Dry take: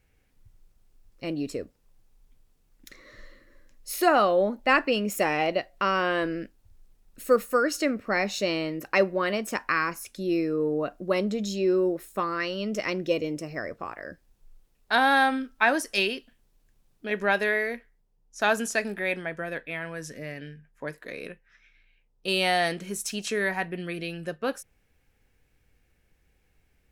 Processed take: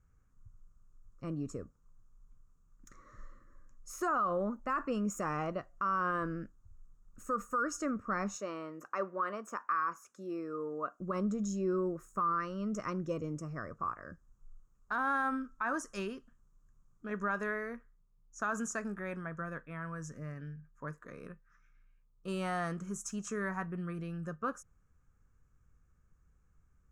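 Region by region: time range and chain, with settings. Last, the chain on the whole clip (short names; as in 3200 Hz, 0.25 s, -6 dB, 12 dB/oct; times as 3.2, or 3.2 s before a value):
8.37–11 HPF 380 Hz + dynamic EQ 8200 Hz, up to -7 dB, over -49 dBFS, Q 0.72
whole clip: EQ curve 160 Hz 0 dB, 300 Hz -9 dB, 810 Hz -13 dB, 1200 Hz +5 dB, 2000 Hz -18 dB, 4300 Hz -26 dB, 6700 Hz -3 dB, 11000 Hz -21 dB; limiter -24.5 dBFS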